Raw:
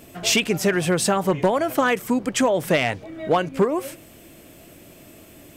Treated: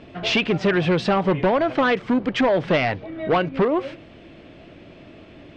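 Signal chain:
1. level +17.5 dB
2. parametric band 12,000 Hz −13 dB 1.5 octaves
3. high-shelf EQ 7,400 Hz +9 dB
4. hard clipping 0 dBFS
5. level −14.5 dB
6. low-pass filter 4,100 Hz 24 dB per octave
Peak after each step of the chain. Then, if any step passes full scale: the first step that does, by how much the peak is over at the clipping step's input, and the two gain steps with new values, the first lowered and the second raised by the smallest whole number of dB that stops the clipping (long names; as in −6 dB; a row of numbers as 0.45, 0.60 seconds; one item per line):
+7.0, +7.0, +7.0, 0.0, −14.5, −12.5 dBFS
step 1, 7.0 dB
step 1 +10.5 dB, step 5 −7.5 dB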